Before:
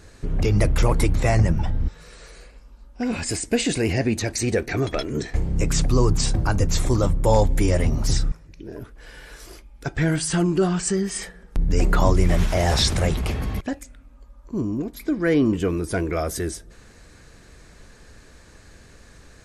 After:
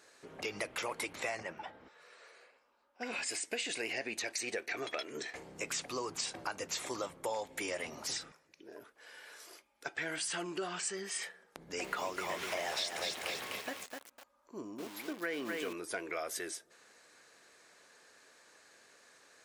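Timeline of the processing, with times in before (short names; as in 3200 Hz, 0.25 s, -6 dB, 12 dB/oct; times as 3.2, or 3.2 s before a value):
1.43–3.01 tone controls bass -7 dB, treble -11 dB
11.59–15.73 lo-fi delay 0.252 s, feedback 35%, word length 6-bit, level -4.5 dB
whole clip: HPF 530 Hz 12 dB/oct; dynamic EQ 2600 Hz, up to +6 dB, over -45 dBFS, Q 1.1; compressor 5:1, threshold -26 dBFS; gain -8 dB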